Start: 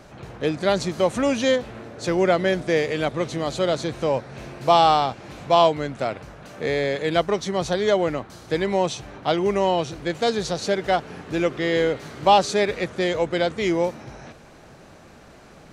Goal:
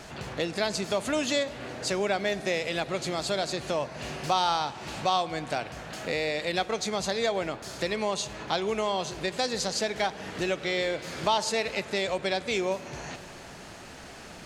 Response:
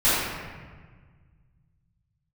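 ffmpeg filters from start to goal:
-filter_complex "[0:a]equalizer=f=4.8k:w=0.32:g=8,acompressor=threshold=-32dB:ratio=2,asplit=2[a][b];[1:a]atrim=start_sample=2205,asetrate=27342,aresample=44100[c];[b][c]afir=irnorm=-1:irlink=0,volume=-36.5dB[d];[a][d]amix=inputs=2:normalize=0,asetrate=48000,aresample=44100"

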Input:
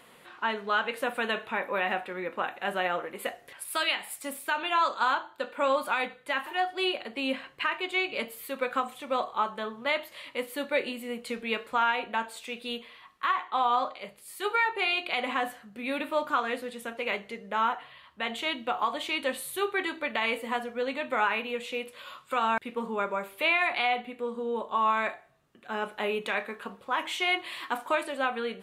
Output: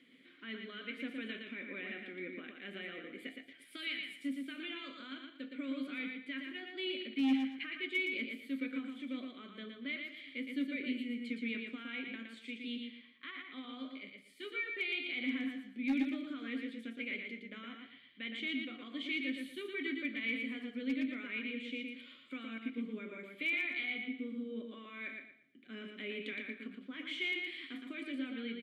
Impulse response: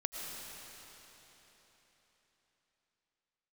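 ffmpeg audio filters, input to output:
-filter_complex "[0:a]equalizer=f=2.7k:t=o:w=0.44:g=-4.5,alimiter=limit=-22dB:level=0:latency=1:release=29,asplit=3[a][b][c];[a]bandpass=f=270:t=q:w=8,volume=0dB[d];[b]bandpass=f=2.29k:t=q:w=8,volume=-6dB[e];[c]bandpass=f=3.01k:t=q:w=8,volume=-9dB[f];[d][e][f]amix=inputs=3:normalize=0,asoftclip=type=hard:threshold=-32.5dB,asplit=2[g][h];[h]aecho=0:1:116|232|348|464:0.596|0.167|0.0467|0.0131[i];[g][i]amix=inputs=2:normalize=0,volume=5dB"

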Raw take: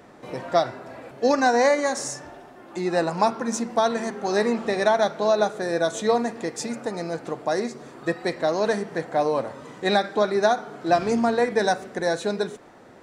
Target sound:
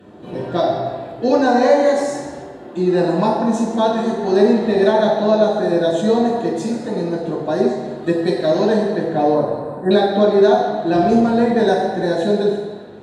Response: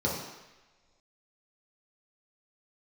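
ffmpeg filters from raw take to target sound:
-filter_complex "[0:a]asettb=1/sr,asplit=3[a][b][c];[a]atrim=end=8.024[d];[b]atrim=start=8.02:end=8.64,asetpts=PTS-STARTPTS,afade=t=in:d=0.004:c=qsin,afade=t=out:st=0.616:d=0.004:c=qsin,highshelf=f=4.6k:g=7[e];[c]atrim=start=8.636[f];[d][e]acrossfade=d=0.004:c1=hsin:c2=qsin[g];[g][f]acrossfade=d=0.004:c1=qsin:c2=hsin,asettb=1/sr,asplit=3[h][i][j];[h]atrim=end=9.344[k];[i]atrim=start=9.34:end=9.91,asetpts=PTS-STARTPTS,afade=t=in:d=0.004:c=qsin,afade=t=out:st=0.566:d=0.004:c=qsin,asuperstop=centerf=3900:order=20:qfactor=0.64[l];[j]atrim=start=9.906[m];[k][l]acrossfade=d=0.004:c1=hsin:c2=qsin[n];[n][m]acrossfade=d=0.004:c1=qsin:c2=hsin[o];[1:a]atrim=start_sample=2205,asetrate=31752,aresample=44100[p];[o][p]afir=irnorm=-1:irlink=0,volume=-8dB"

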